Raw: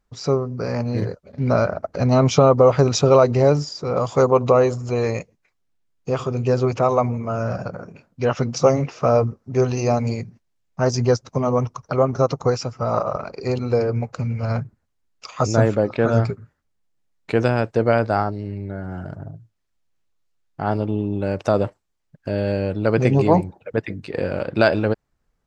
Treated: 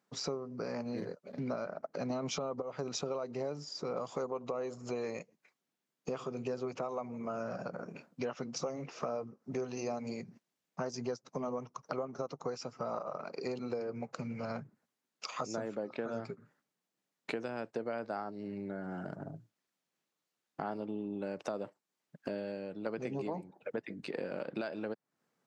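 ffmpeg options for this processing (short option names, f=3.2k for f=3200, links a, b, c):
-filter_complex "[0:a]asplit=4[a][b][c][d];[a]atrim=end=2.102[e];[b]atrim=start=2.098:end=2.622,asetpts=PTS-STARTPTS,volume=11dB[f];[c]atrim=start=2.618:end=22.86,asetpts=PTS-STARTPTS,afade=t=out:st=19.752:d=0.49:c=qua:silence=0.281838[g];[d]atrim=start=22.86,asetpts=PTS-STARTPTS,afade=t=in:d=0.004:c=hsin:silence=0.281838[h];[e][f]acrossfade=d=0.004:c1=hsin:c2=hsin[i];[g][h]concat=n=2:v=0:a=1[j];[i][j]acrossfade=d=0.004:c1=hsin:c2=hsin,highpass=f=170:w=0.5412,highpass=f=170:w=1.3066,alimiter=limit=-9dB:level=0:latency=1:release=420,acompressor=threshold=-36dB:ratio=4,volume=-1.5dB"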